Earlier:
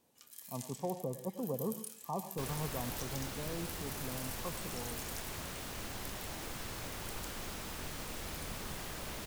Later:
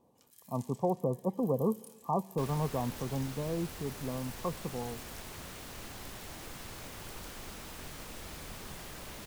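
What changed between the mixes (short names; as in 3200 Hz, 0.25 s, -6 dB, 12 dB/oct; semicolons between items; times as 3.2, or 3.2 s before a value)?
speech +9.5 dB; first sound -8.0 dB; reverb: off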